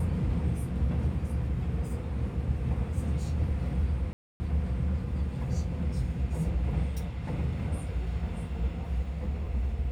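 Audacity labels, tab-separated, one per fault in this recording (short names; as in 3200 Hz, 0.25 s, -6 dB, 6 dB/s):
4.130000	4.400000	gap 0.27 s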